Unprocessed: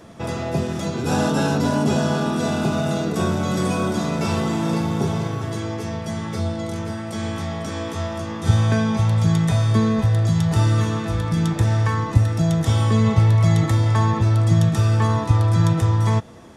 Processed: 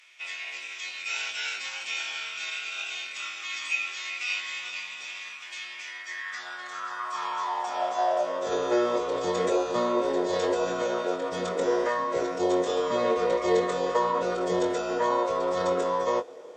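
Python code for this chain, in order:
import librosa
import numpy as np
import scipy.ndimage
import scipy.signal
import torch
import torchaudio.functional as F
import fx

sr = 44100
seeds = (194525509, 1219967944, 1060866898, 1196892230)

y = fx.pitch_keep_formants(x, sr, semitones=-10.5)
y = fx.filter_sweep_highpass(y, sr, from_hz=2400.0, to_hz=480.0, start_s=5.74, end_s=8.62, q=5.8)
y = fx.doubler(y, sr, ms=22.0, db=-6.0)
y = F.gain(torch.from_numpy(y), -5.5).numpy()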